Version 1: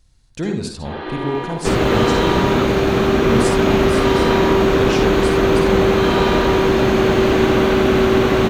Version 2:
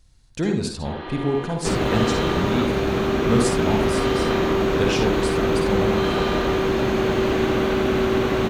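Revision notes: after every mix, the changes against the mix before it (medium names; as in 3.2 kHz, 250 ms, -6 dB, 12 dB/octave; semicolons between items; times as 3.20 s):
first sound: send -9.0 dB; second sound -6.0 dB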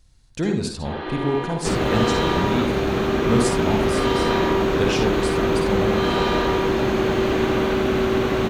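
first sound: send +6.5 dB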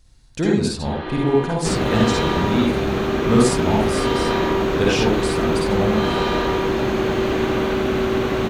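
speech: send +7.0 dB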